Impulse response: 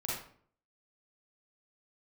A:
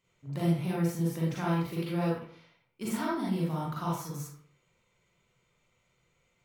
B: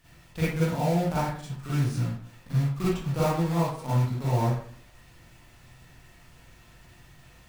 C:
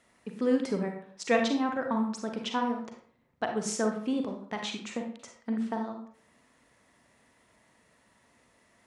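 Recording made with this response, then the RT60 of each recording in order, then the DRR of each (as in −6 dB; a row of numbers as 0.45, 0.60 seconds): A; 0.55, 0.55, 0.55 seconds; −6.5, −11.0, 3.0 decibels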